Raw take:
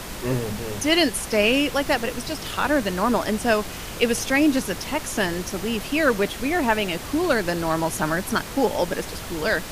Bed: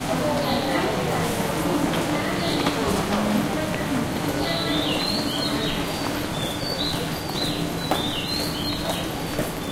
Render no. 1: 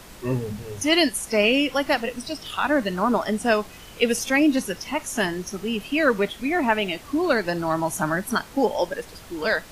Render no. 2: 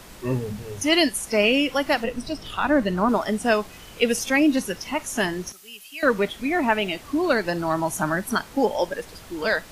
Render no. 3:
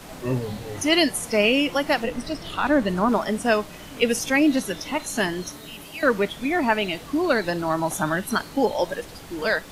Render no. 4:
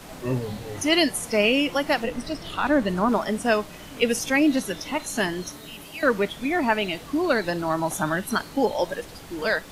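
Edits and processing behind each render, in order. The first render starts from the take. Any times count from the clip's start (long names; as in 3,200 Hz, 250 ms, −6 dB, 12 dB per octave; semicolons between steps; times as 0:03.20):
noise reduction from a noise print 10 dB
0:02.04–0:03.09: spectral tilt −1.5 dB per octave; 0:05.52–0:06.03: first-order pre-emphasis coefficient 0.97
mix in bed −17.5 dB
level −1 dB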